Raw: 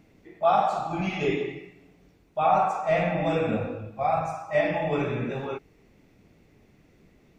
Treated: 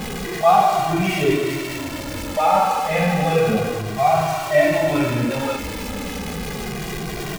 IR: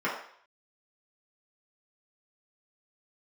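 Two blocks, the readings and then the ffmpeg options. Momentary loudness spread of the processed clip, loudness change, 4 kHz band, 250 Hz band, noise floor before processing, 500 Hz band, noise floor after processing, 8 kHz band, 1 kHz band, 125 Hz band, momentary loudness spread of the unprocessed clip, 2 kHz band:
12 LU, +6.0 dB, +13.5 dB, +9.0 dB, -60 dBFS, +7.0 dB, -29 dBFS, n/a, +7.0 dB, +9.0 dB, 12 LU, +9.0 dB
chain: -filter_complex "[0:a]aeval=exprs='val(0)+0.5*0.0473*sgn(val(0))':c=same,asplit=2[a][b];[b]adelay=2,afreqshift=-0.31[c];[a][c]amix=inputs=2:normalize=1,volume=7.5dB"

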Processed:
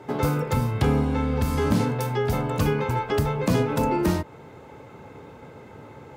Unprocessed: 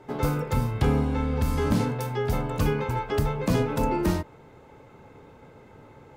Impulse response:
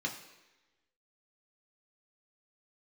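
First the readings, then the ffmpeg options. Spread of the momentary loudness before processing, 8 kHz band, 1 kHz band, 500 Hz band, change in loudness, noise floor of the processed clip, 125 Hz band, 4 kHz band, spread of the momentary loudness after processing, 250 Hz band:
4 LU, +2.5 dB, +3.0 dB, +2.5 dB, +2.0 dB, -46 dBFS, +2.0 dB, +2.5 dB, 3 LU, +2.5 dB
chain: -filter_complex "[0:a]highpass=67,asplit=2[a][b];[b]acompressor=threshold=-32dB:ratio=6,volume=0dB[c];[a][c]amix=inputs=2:normalize=0"

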